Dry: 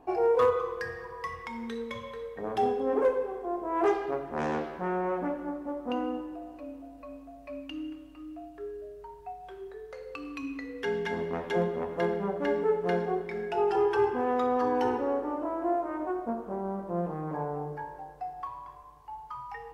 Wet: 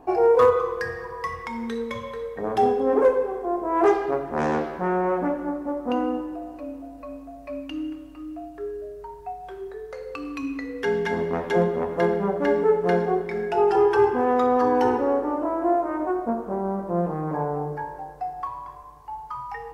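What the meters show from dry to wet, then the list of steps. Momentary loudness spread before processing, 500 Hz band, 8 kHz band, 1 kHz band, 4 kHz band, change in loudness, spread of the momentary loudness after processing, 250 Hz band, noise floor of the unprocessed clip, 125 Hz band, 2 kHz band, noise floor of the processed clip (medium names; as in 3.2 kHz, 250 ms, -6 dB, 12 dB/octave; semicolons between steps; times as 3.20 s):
17 LU, +7.0 dB, no reading, +7.0 dB, +3.5 dB, +7.0 dB, 17 LU, +7.0 dB, -49 dBFS, +7.0 dB, +6.0 dB, -42 dBFS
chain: peaking EQ 3 kHz -4 dB 0.87 oct; trim +7 dB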